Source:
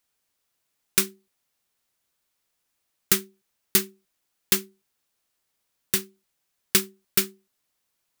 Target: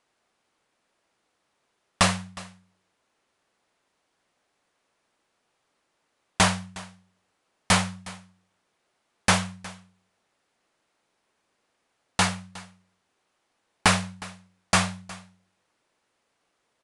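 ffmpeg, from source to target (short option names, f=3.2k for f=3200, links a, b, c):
-filter_complex "[0:a]asplit=2[a][b];[b]highpass=f=720:p=1,volume=13dB,asoftclip=type=tanh:threshold=-3dB[c];[a][c]amix=inputs=2:normalize=0,lowpass=f=1.9k:p=1,volume=-6dB,asetrate=21477,aresample=44100,aecho=1:1:362:0.1,volume=3.5dB"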